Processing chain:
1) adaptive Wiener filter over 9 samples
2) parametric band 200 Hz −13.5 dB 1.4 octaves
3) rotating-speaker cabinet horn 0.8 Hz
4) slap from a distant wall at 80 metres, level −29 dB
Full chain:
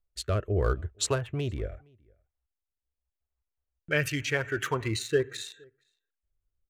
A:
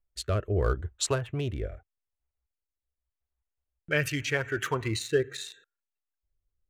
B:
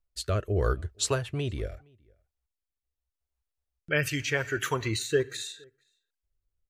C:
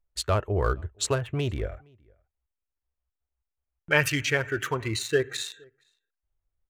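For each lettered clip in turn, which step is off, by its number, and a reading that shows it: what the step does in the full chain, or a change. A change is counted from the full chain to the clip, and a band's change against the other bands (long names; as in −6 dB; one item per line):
4, echo-to-direct ratio −30.5 dB to none audible
1, change in momentary loudness spread +1 LU
3, 1 kHz band +2.5 dB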